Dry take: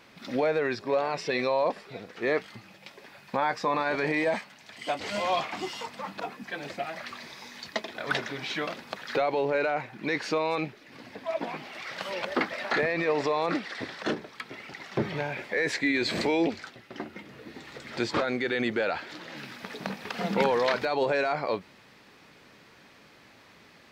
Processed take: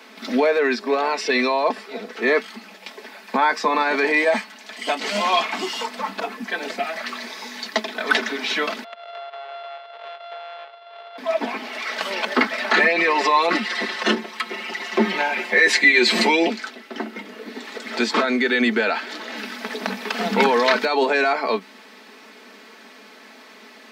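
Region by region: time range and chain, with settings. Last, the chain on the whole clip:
8.84–11.18 sample sorter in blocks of 64 samples + elliptic band-pass 560–3500 Hz + compressor 5:1, threshold -44 dBFS
12.73–16.5 bell 2700 Hz +4.5 dB 0.21 oct + comb 5.6 ms, depth 90%
whole clip: steep high-pass 210 Hz 72 dB/oct; comb 4.6 ms, depth 56%; dynamic EQ 530 Hz, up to -5 dB, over -39 dBFS, Q 1.3; gain +9 dB

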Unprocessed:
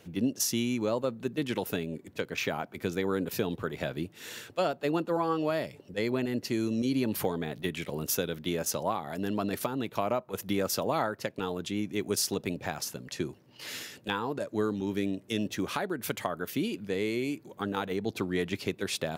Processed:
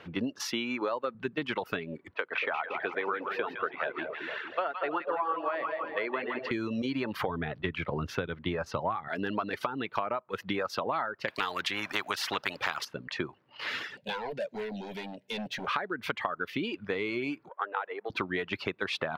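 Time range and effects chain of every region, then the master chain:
0.45–1.15 HPF 220 Hz + high shelf 7700 Hz +5 dB
2.14–6.51 three-band isolator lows -19 dB, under 330 Hz, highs -17 dB, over 3200 Hz + notches 60/120/180 Hz + split-band echo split 690 Hz, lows 0.232 s, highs 0.163 s, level -6 dB
7.28–9.08 LPF 2800 Hz 6 dB/oct + bell 82 Hz +13.5 dB 1.7 oct
11.28–12.85 tilt +2.5 dB/oct + spectral compressor 2:1
13.97–15.67 high shelf 3600 Hz +9.5 dB + overloaded stage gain 32.5 dB + fixed phaser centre 320 Hz, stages 6
17.49–18.1 half-wave gain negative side -3 dB + HPF 460 Hz 24 dB/oct + air absorption 430 m
whole clip: reverb removal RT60 0.71 s; EQ curve 200 Hz 0 dB, 690 Hz +6 dB, 1200 Hz +14 dB, 3100 Hz +6 dB, 4600 Hz 0 dB, 7300 Hz -15 dB, 11000 Hz -18 dB; compressor, threshold -28 dBFS

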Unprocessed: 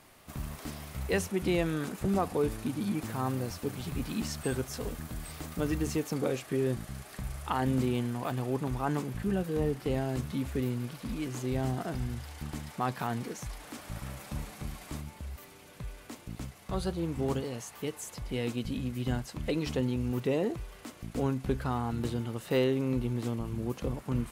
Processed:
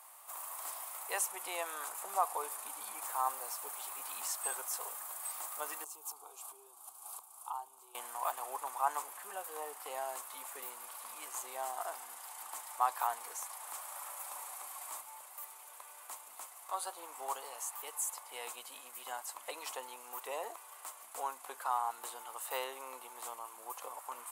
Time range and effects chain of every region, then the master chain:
5.84–7.95 low shelf 210 Hz +10.5 dB + compressor 4:1, threshold -37 dBFS + fixed phaser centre 370 Hz, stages 8
whole clip: HPF 930 Hz 24 dB/oct; band shelf 2900 Hz -14 dB 2.4 oct; gain +8.5 dB

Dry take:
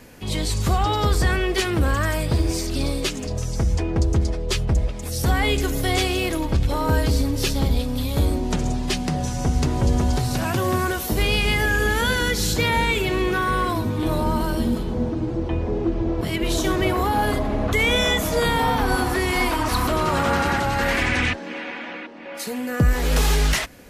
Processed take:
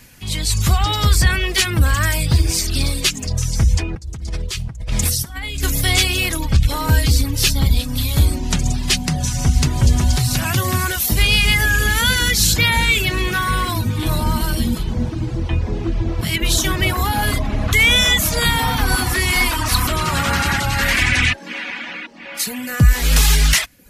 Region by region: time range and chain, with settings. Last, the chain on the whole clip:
3.95–5.63 negative-ratio compressor -30 dBFS + flutter echo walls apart 9.8 m, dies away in 0.3 s
whole clip: reverb removal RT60 0.51 s; EQ curve 130 Hz 0 dB, 450 Hz -12 dB, 2200 Hz +1 dB, 11000 Hz +5 dB; AGC gain up to 5.5 dB; gain +2 dB

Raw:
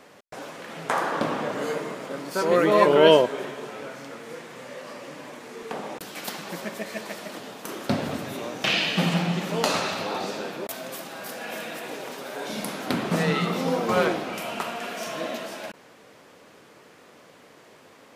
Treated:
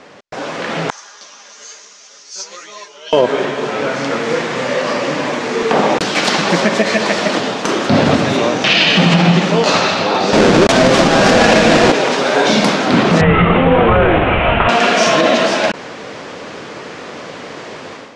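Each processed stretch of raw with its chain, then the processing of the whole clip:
0.9–3.13 band-pass 6100 Hz, Q 5.7 + comb 4.9 ms, depth 38% + ensemble effect
10.33–11.92 half-waves squared off + low shelf 260 Hz +7 dB
13.21–14.69 CVSD 16 kbps + resonant low shelf 130 Hz +13.5 dB, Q 1.5
whole clip: LPF 6600 Hz 24 dB/oct; AGC gain up to 11.5 dB; maximiser +11.5 dB; gain -1 dB

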